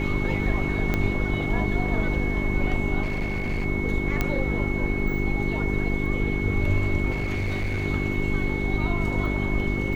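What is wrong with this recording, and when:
hum 50 Hz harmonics 8 -28 dBFS
whine 2.2 kHz -31 dBFS
0.94 s: pop -11 dBFS
3.02–3.66 s: clipped -22.5 dBFS
4.21 s: pop -10 dBFS
7.10–7.84 s: clipped -22.5 dBFS

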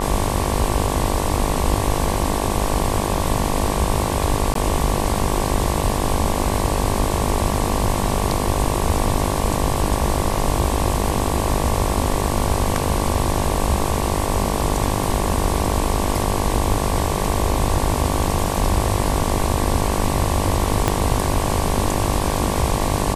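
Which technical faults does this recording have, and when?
buzz 50 Hz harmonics 23 -24 dBFS
4.54–4.55 s: dropout 13 ms
20.88 s: pop -3 dBFS

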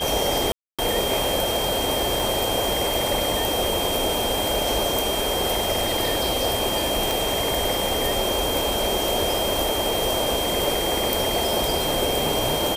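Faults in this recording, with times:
whine 3.2 kHz -27 dBFS
0.52–0.79 s: dropout 266 ms
2.20 s: pop
7.11 s: pop

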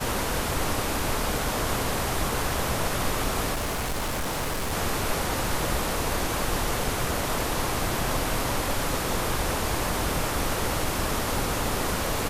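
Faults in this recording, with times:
3.52–4.73 s: clipped -25 dBFS

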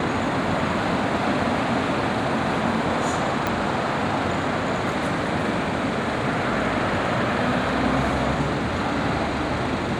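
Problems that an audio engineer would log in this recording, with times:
3.47 s: pop -8 dBFS

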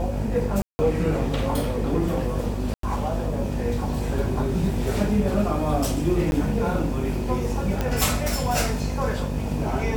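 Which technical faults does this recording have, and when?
buzz 50 Hz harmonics 20 -28 dBFS
0.62–0.79 s: dropout 170 ms
2.74–2.83 s: dropout 93 ms
6.31–6.32 s: dropout
7.81 s: pop -11 dBFS

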